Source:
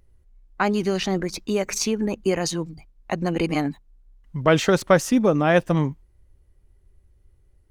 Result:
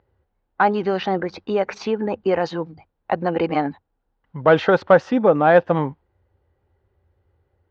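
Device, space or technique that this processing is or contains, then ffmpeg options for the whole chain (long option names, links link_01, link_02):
overdrive pedal into a guitar cabinet: -filter_complex "[0:a]asplit=2[link_01][link_02];[link_02]highpass=frequency=720:poles=1,volume=11dB,asoftclip=type=tanh:threshold=-3.5dB[link_03];[link_01][link_03]amix=inputs=2:normalize=0,lowpass=frequency=1300:poles=1,volume=-6dB,highpass=83,equalizer=frequency=87:width_type=q:width=4:gain=10,equalizer=frequency=500:width_type=q:width=4:gain=5,equalizer=frequency=820:width_type=q:width=4:gain=7,equalizer=frequency=1500:width_type=q:width=4:gain=4,equalizer=frequency=2300:width_type=q:width=4:gain=-3,lowpass=frequency=4400:width=0.5412,lowpass=frequency=4400:width=1.3066"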